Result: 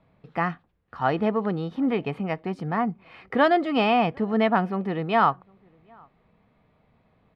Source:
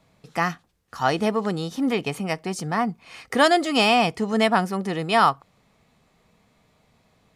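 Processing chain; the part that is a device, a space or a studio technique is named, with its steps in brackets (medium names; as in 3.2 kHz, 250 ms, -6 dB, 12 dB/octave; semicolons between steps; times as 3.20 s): shout across a valley (distance through air 440 m; echo from a far wall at 130 m, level -30 dB)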